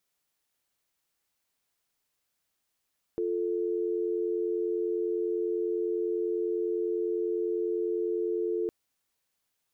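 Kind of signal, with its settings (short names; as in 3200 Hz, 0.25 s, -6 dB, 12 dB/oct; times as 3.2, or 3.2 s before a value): call progress tone dial tone, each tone -29.5 dBFS 5.51 s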